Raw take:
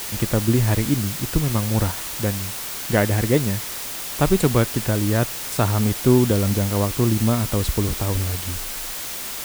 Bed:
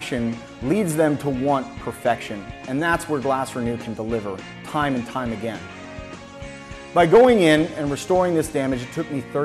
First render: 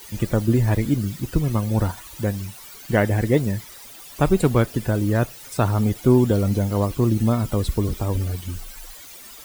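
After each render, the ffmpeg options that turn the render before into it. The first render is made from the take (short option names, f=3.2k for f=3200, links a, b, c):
-af "afftdn=nr=15:nf=-31"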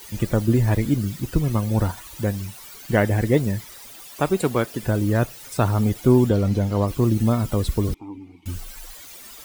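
-filter_complex "[0:a]asettb=1/sr,asplit=3[a][b][c];[a]atrim=end=4.074[d];[b]atrim=start=4.07:end=4.83,asetpts=PTS-STARTPTS,afade=t=in:d=0.004:c=qsin,afade=t=out:st=0.756:d=0.004:c=qsin,highpass=f=290:p=1[e];[c]atrim=start=4.826[f];[d][e]acrossfade=d=0.004:c1=hsin:c2=qsin[g];[g][f]acrossfade=d=0.004:c1=qsin:c2=hsin,asettb=1/sr,asplit=3[h][i][j];[h]atrim=end=6.294[k];[i]atrim=start=6.29:end=6.88,asetpts=PTS-STARTPTS,afade=t=in:d=0.004:c=qsin,afade=t=out:st=0.586:d=0.004:c=qsin,acrossover=split=6100[l][m];[m]acompressor=threshold=-48dB:ratio=4:attack=1:release=60[n];[l][n]amix=inputs=2:normalize=0[o];[j]atrim=start=6.876[p];[k][o]acrossfade=d=0.004:c1=hsin:c2=qsin[q];[q][p]acrossfade=d=0.004:c1=qsin:c2=hsin,asettb=1/sr,asplit=3[r][s][t];[r]atrim=end=7.944[u];[s]atrim=start=7.94:end=8.46,asetpts=PTS-STARTPTS,afade=t=in:d=0.004:c=qsin,afade=t=out:st=0.516:d=0.004:c=qsin,asplit=3[v][w][x];[v]bandpass=f=300:t=q:w=8,volume=0dB[y];[w]bandpass=f=870:t=q:w=8,volume=-6dB[z];[x]bandpass=f=2.24k:t=q:w=8,volume=-9dB[aa];[y][z][aa]amix=inputs=3:normalize=0[ab];[t]atrim=start=8.456[ac];[u][ab]acrossfade=d=0.004:c1=hsin:c2=qsin[ad];[ad][ac]acrossfade=d=0.004:c1=qsin:c2=hsin"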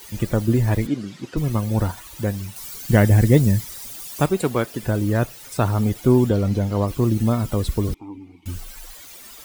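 -filter_complex "[0:a]asplit=3[a][b][c];[a]afade=t=out:st=0.86:d=0.02[d];[b]highpass=230,lowpass=5.2k,afade=t=in:st=0.86:d=0.02,afade=t=out:st=1.36:d=0.02[e];[c]afade=t=in:st=1.36:d=0.02[f];[d][e][f]amix=inputs=3:normalize=0,asettb=1/sr,asplit=3[g][h][i];[g]atrim=end=2.564[j];[h]atrim=start=2.56:end=4.26,asetpts=PTS-STARTPTS,afade=t=in:d=0.004:c=qsin,afade=t=out:st=1.696:d=0.004:c=qsin,bass=f=250:g=8,treble=f=4k:g=7[k];[i]atrim=start=4.256[l];[j][k]acrossfade=d=0.004:c1=hsin:c2=qsin[m];[m][l]acrossfade=d=0.004:c1=qsin:c2=hsin"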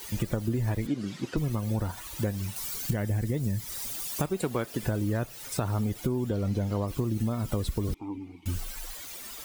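-af "alimiter=limit=-11dB:level=0:latency=1:release=322,acompressor=threshold=-25dB:ratio=6"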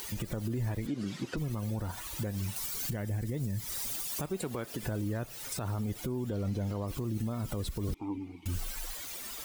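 -af "alimiter=level_in=1.5dB:limit=-24dB:level=0:latency=1:release=97,volume=-1.5dB,acompressor=mode=upward:threshold=-43dB:ratio=2.5"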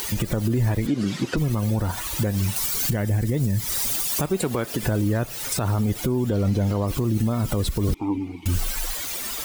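-af "volume=11.5dB"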